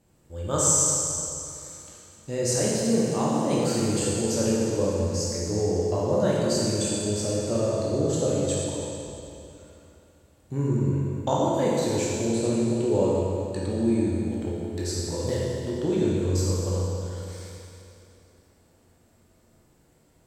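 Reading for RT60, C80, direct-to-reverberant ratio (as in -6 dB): 2.8 s, -1.0 dB, -6.0 dB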